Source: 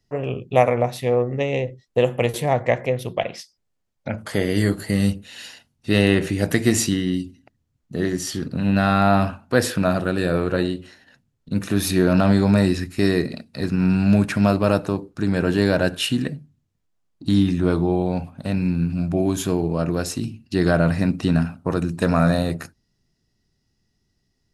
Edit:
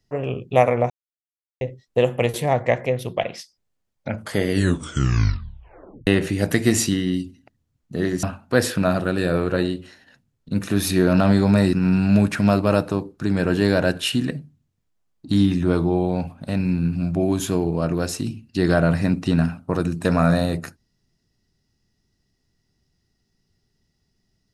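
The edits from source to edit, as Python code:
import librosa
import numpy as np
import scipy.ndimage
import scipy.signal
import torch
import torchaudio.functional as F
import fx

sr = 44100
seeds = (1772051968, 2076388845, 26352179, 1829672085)

y = fx.edit(x, sr, fx.silence(start_s=0.9, length_s=0.71),
    fx.tape_stop(start_s=4.5, length_s=1.57),
    fx.cut(start_s=8.23, length_s=1.0),
    fx.cut(start_s=12.73, length_s=0.97), tone=tone)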